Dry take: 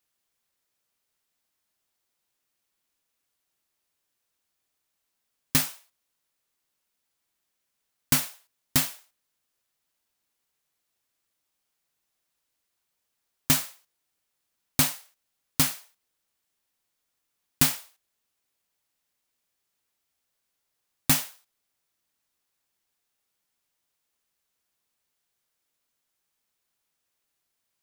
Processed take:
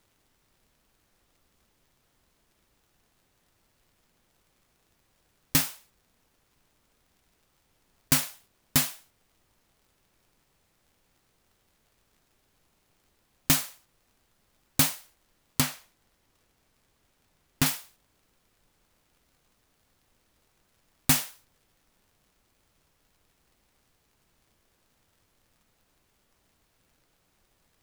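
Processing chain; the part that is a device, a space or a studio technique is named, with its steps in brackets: 15.60–17.66 s: treble shelf 5.2 kHz -8.5 dB; vinyl LP (wow and flutter; crackle; pink noise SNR 33 dB)

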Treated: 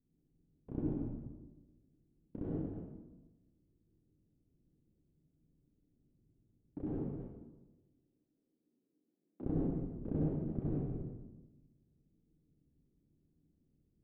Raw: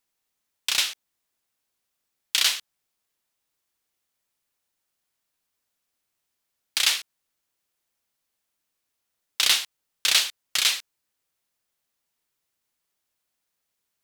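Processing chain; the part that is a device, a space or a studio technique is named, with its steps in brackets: chunks repeated in reverse 143 ms, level -7 dB; 6.98–9.41 s: high-pass 250 Hz 24 dB/octave; next room (low-pass 280 Hz 24 dB/octave; reverberation RT60 1.1 s, pre-delay 57 ms, DRR -4.5 dB); trim +17 dB

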